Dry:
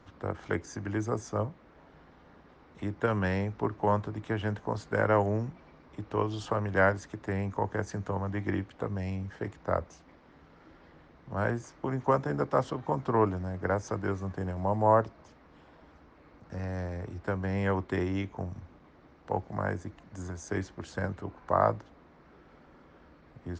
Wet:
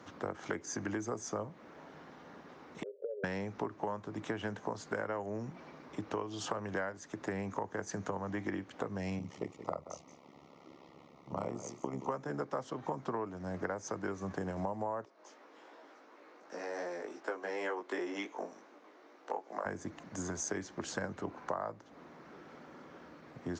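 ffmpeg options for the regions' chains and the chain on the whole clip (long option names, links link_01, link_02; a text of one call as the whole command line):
ffmpeg -i in.wav -filter_complex "[0:a]asettb=1/sr,asplit=3[link_01][link_02][link_03];[link_01]atrim=end=2.834[link_04];[link_02]atrim=start=2.83:end=3.24,asetpts=PTS-STARTPTS,afade=type=in:duration=0.004:curve=qsin,afade=type=out:start_time=0.406:duration=0.004:curve=qsin,asuperpass=centerf=480:order=12:qfactor=2.4,acompressor=threshold=-45dB:ratio=2.5:attack=3.2:release=140:knee=1:detection=peak[link_05];[link_03]atrim=start=3.236[link_06];[link_04][link_05]acrossfade=duration=0.004:curve1=hsin:curve2=qsin[link_07];[link_07][link_06]acrossfade=duration=0.004:curve1=qsin:curve2=hsin,asettb=1/sr,asplit=3[link_08][link_09][link_10];[link_08]atrim=end=9.194[link_11];[link_09]atrim=start=9.19:end=12.1,asetpts=PTS-STARTPTS,afade=type=in:duration=0.004:curve=qsin,afade=type=out:start_time=2.906:duration=0.004:curve=qsin,tremolo=f=70:d=0.919,asuperstop=centerf=1600:order=4:qfactor=2.4,aecho=1:1:177:0.178,atrim=end_sample=128331[link_12];[link_10]atrim=start=12.096[link_13];[link_11][link_12]acrossfade=duration=0.004:curve1=hsin:curve2=qsin[link_14];[link_14][link_13]acrossfade=duration=0.004:curve1=qsin:curve2=hsin,asettb=1/sr,asplit=3[link_15][link_16][link_17];[link_15]atrim=end=15.054[link_18];[link_16]atrim=start=15.05:end=19.66,asetpts=PTS-STARTPTS,afade=type=in:duration=0.004:curve=qsin,afade=type=out:start_time=4.606:duration=0.004:curve=qsin,highpass=frequency=310:width=0.5412,highpass=frequency=310:width=1.3066,flanger=delay=17:depth=2.4:speed=2.7[link_19];[link_17]atrim=start=19.656[link_20];[link_18][link_19]acrossfade=duration=0.004:curve1=hsin:curve2=qsin[link_21];[link_21][link_20]acrossfade=duration=0.004:curve1=qsin:curve2=hsin,highpass=170,equalizer=frequency=6400:width=2.6:gain=6.5,acompressor=threshold=-38dB:ratio=12,volume=4.5dB" out.wav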